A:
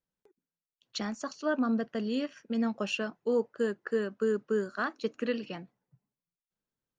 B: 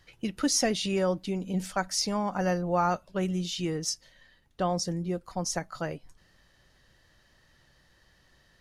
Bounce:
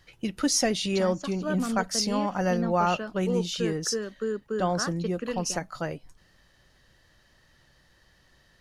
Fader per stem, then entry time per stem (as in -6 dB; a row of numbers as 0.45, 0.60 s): -1.5, +1.5 dB; 0.00, 0.00 s